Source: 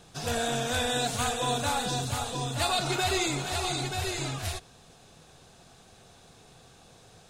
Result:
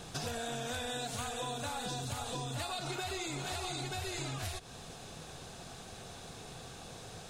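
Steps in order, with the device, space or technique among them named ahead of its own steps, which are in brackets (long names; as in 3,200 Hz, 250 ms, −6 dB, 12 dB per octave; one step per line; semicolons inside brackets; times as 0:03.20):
serial compression, peaks first (downward compressor, threshold −37 dBFS, peak gain reduction 13 dB; downward compressor 2 to 1, threshold −46 dBFS, peak gain reduction 6.5 dB)
level +6.5 dB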